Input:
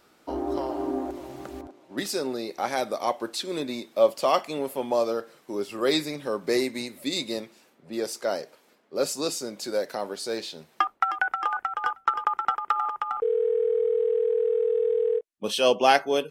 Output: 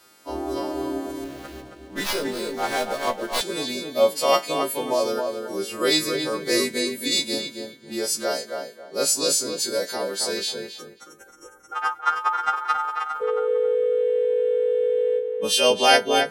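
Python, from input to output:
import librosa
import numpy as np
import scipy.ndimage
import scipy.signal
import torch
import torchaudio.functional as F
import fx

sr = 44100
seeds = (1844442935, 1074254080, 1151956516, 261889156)

y = fx.freq_snap(x, sr, grid_st=2)
y = fx.spec_box(y, sr, start_s=10.63, length_s=1.09, low_hz=560.0, high_hz=5100.0, gain_db=-28)
y = fx.echo_filtered(y, sr, ms=271, feedback_pct=28, hz=2100.0, wet_db=-4.5)
y = fx.running_max(y, sr, window=5, at=(1.24, 3.41))
y = y * librosa.db_to_amplitude(1.5)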